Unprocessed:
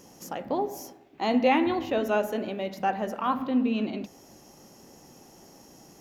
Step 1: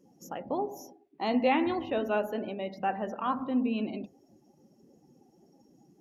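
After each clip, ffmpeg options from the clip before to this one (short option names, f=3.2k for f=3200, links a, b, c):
-af "afftdn=nr=20:nf=-45,volume=-3.5dB"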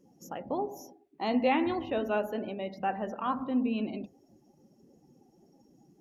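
-af "lowshelf=f=64:g=9,volume=-1dB"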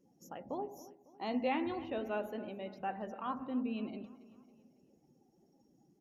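-filter_complex "[0:a]asplit=2[a][b];[b]adelay=276,lowpass=f=4.8k:p=1,volume=-18dB,asplit=2[c][d];[d]adelay=276,lowpass=f=4.8k:p=1,volume=0.51,asplit=2[e][f];[f]adelay=276,lowpass=f=4.8k:p=1,volume=0.51,asplit=2[g][h];[h]adelay=276,lowpass=f=4.8k:p=1,volume=0.51[i];[a][c][e][g][i]amix=inputs=5:normalize=0,volume=-7.5dB"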